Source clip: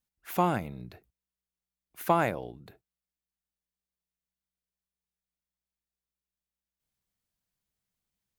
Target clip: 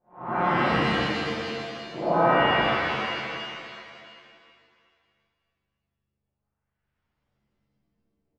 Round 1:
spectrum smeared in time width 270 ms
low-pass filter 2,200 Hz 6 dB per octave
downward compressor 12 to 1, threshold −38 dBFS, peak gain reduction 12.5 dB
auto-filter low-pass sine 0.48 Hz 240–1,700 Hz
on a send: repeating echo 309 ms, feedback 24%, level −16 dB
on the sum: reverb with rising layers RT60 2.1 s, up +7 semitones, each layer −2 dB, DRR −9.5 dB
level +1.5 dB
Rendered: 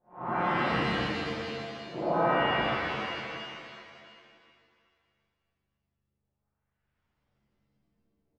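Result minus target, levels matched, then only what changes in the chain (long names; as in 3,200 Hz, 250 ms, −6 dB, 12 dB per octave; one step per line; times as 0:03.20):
downward compressor: peak gain reduction +6 dB
change: downward compressor 12 to 1, threshold −31.5 dBFS, peak gain reduction 6.5 dB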